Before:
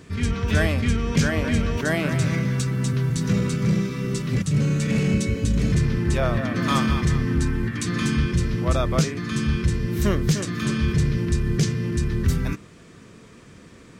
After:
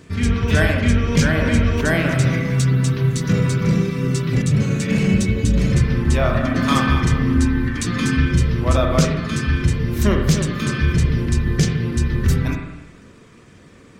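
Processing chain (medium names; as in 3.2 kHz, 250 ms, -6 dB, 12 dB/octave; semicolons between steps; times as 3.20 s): reverb removal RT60 0.56 s; in parallel at -4 dB: crossover distortion -41.5 dBFS; on the sum: spring tank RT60 1.1 s, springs 38/42/53 ms, chirp 50 ms, DRR 2 dB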